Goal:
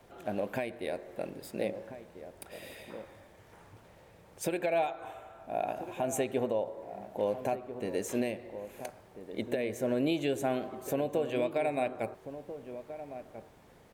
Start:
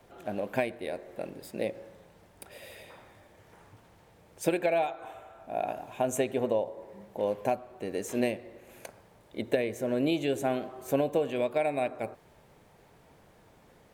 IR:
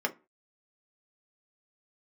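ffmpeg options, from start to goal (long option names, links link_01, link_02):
-filter_complex "[0:a]alimiter=limit=-20dB:level=0:latency=1:release=183,asplit=2[link_01][link_02];[link_02]adelay=1341,volume=-11dB,highshelf=frequency=4000:gain=-30.2[link_03];[link_01][link_03]amix=inputs=2:normalize=0"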